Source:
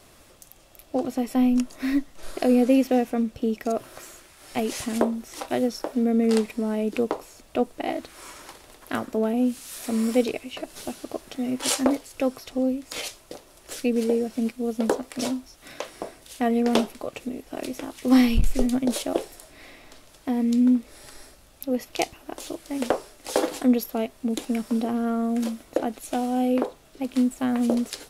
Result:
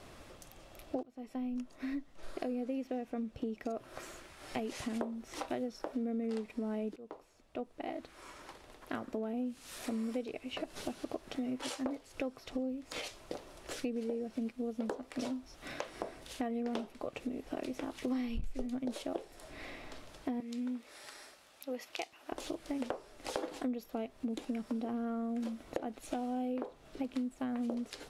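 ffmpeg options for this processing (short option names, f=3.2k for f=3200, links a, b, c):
-filter_complex "[0:a]asettb=1/sr,asplit=3[a][b][c];[a]atrim=end=20.404[d];[b]atrim=start=20.4:end=22.32,asetpts=PTS-STARTPTS,afade=t=in:d=0.004:c=qsin,afade=t=out:st=1.916:d=0.004:c=qsin,highpass=f=1.1k:p=1[e];[c]atrim=start=22.316[f];[d][e]acrossfade=d=0.004:c1=hsin:c2=qsin[g];[g][f]acrossfade=d=0.004:c1=qsin:c2=hsin,asplit=3[h][i][j];[h]atrim=end=1.03,asetpts=PTS-STARTPTS,afade=t=out:st=1.026:d=0.004:c=hsin:silence=0.0944061[k];[i]atrim=start=1.03:end=6.96,asetpts=PTS-STARTPTS,afade=t=in:d=3.84:silence=0.0944061,afade=t=out:st=5.926:d=0.004:c=hsin:silence=0.0630957[l];[j]atrim=start=6.96,asetpts=PTS-STARTPTS,afade=t=in:d=3.73:silence=0.0630957[m];[k][l][m]concat=n=3:v=0:a=1,acompressor=threshold=-36dB:ratio=6,aemphasis=mode=reproduction:type=50kf,volume=1dB"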